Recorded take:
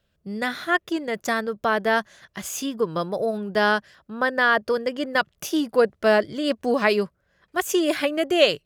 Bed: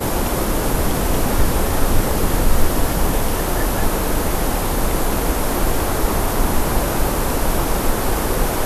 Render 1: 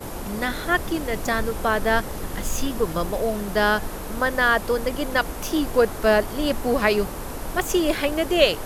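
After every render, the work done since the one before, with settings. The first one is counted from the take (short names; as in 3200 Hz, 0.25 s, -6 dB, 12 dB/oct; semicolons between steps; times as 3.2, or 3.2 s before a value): add bed -13 dB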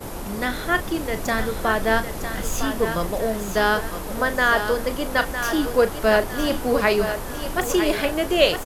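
doubler 36 ms -12 dB; on a send: thinning echo 0.957 s, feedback 42%, level -7.5 dB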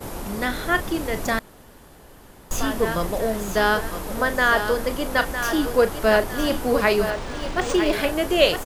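1.39–2.51 room tone; 7.1–7.93 decimation joined by straight lines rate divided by 3×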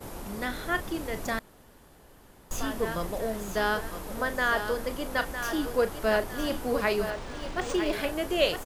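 gain -7.5 dB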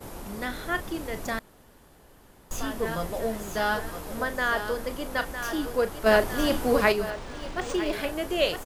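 2.84–4.24 doubler 13 ms -5 dB; 6.06–6.92 gain +5.5 dB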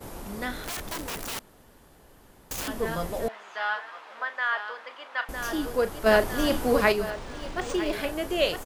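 0.62–2.68 wrapped overs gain 28.5 dB; 3.28–5.29 Butterworth band-pass 1700 Hz, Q 0.71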